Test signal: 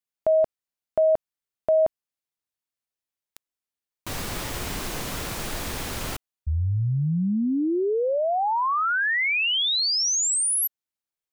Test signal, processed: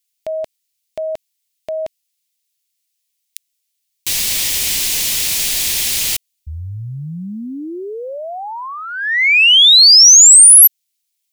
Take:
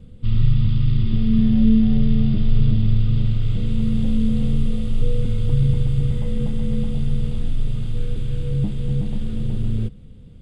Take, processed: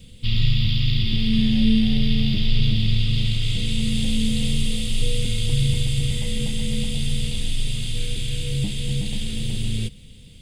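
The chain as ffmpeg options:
-af "aexciter=amount=8.4:drive=5.2:freq=2000,volume=0.708"

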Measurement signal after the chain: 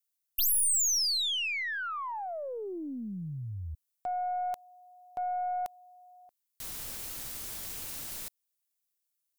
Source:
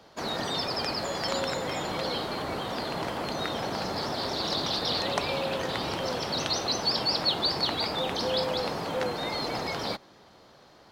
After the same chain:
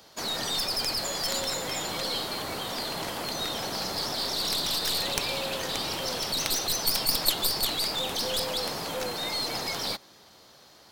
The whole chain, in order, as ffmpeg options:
-af "crystalizer=i=4:c=0,aeval=exprs='0.668*(cos(1*acos(clip(val(0)/0.668,-1,1)))-cos(1*PI/2))+0.188*(cos(3*acos(clip(val(0)/0.668,-1,1)))-cos(3*PI/2))+0.0422*(cos(6*acos(clip(val(0)/0.668,-1,1)))-cos(6*PI/2))+0.0944*(cos(7*acos(clip(val(0)/0.668,-1,1)))-cos(7*PI/2))':c=same,volume=0.841"

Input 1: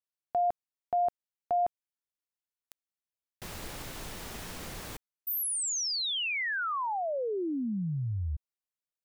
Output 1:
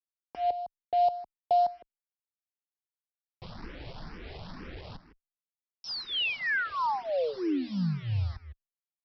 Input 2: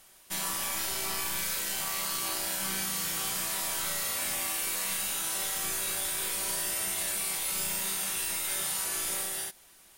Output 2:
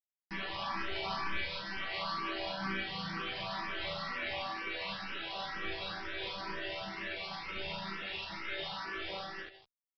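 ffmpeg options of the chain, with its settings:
-filter_complex "[0:a]afftdn=nr=19:nf=-40,acrossover=split=3500[s0][s1];[s1]acompressor=threshold=0.00708:ratio=4:attack=1:release=60[s2];[s0][s2]amix=inputs=2:normalize=0,aresample=11025,acrusher=bits=7:mix=0:aa=0.000001,aresample=44100,asplit=2[s3][s4];[s4]adelay=157.4,volume=0.224,highshelf=f=4000:g=-3.54[s5];[s3][s5]amix=inputs=2:normalize=0,asplit=2[s6][s7];[s7]afreqshift=2.1[s8];[s6][s8]amix=inputs=2:normalize=1,volume=1.68"

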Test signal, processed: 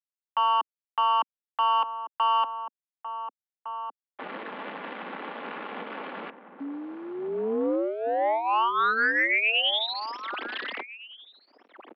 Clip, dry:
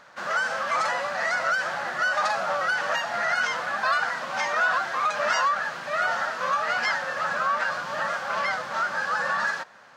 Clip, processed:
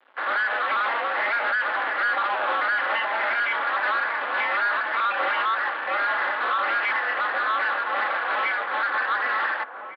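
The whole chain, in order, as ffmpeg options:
-filter_complex "[0:a]afftdn=nr=14:nf=-49,equalizer=f=570:t=o:w=0.23:g=-4.5,aecho=1:1:3.3:0.62,acrossover=split=510[s0][s1];[s1]acontrast=57[s2];[s0][s2]amix=inputs=2:normalize=0,alimiter=limit=0.282:level=0:latency=1:release=166,adynamicsmooth=sensitivity=4:basefreq=650,aresample=11025,aeval=exprs='sgn(val(0))*max(abs(val(0))-0.0015,0)':c=same,aresample=44100,aeval=exprs='val(0)*sin(2*PI*110*n/s)':c=same,acrusher=bits=9:mix=0:aa=0.000001,asoftclip=type=tanh:threshold=0.0668,asplit=2[s3][s4];[s4]adelay=1458,volume=0.355,highshelf=f=4000:g=-32.8[s5];[s3][s5]amix=inputs=2:normalize=0,highpass=f=190:t=q:w=0.5412,highpass=f=190:t=q:w=1.307,lowpass=f=3400:t=q:w=0.5176,lowpass=f=3400:t=q:w=0.7071,lowpass=f=3400:t=q:w=1.932,afreqshift=66,volume=1.58"

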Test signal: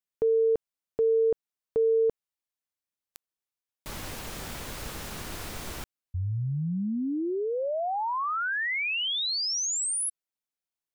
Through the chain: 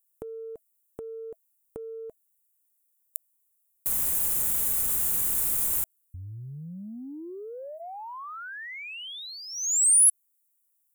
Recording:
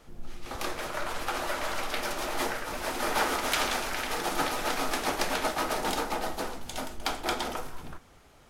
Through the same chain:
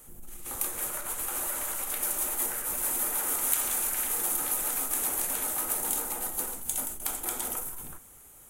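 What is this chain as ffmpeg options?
-af "bandreject=f=650:w=13,acompressor=threshold=0.0158:ratio=10:attack=12:release=22:knee=6:detection=peak,aexciter=amount=5.9:drive=9.9:freq=7300,volume=0.668"

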